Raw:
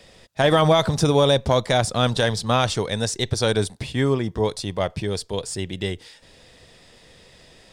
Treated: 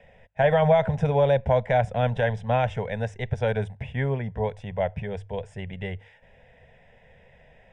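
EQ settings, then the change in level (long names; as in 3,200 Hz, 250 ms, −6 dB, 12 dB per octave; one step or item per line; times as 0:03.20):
low-pass filter 2,100 Hz 12 dB per octave
mains-hum notches 50/100 Hz
phaser with its sweep stopped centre 1,200 Hz, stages 6
0.0 dB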